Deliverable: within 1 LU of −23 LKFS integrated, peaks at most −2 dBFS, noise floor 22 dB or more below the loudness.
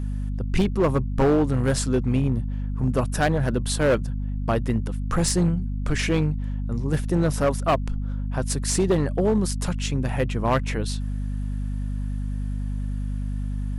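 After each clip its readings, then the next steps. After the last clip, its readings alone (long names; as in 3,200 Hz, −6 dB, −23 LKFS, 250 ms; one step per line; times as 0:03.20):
share of clipped samples 1.5%; peaks flattened at −14.5 dBFS; mains hum 50 Hz; hum harmonics up to 250 Hz; level of the hum −25 dBFS; integrated loudness −25.0 LKFS; sample peak −14.5 dBFS; target loudness −23.0 LKFS
→ clipped peaks rebuilt −14.5 dBFS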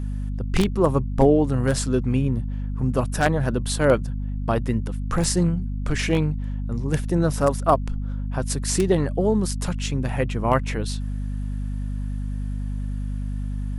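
share of clipped samples 0.0%; mains hum 50 Hz; hum harmonics up to 250 Hz; level of the hum −25 dBFS
→ hum removal 50 Hz, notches 5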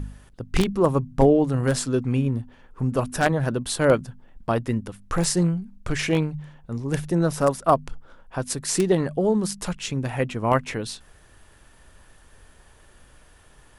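mains hum none found; integrated loudness −24.0 LKFS; sample peak −5.0 dBFS; target loudness −23.0 LKFS
→ level +1 dB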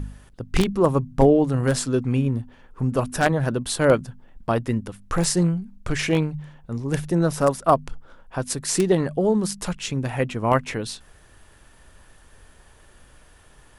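integrated loudness −23.0 LKFS; sample peak −4.0 dBFS; background noise floor −52 dBFS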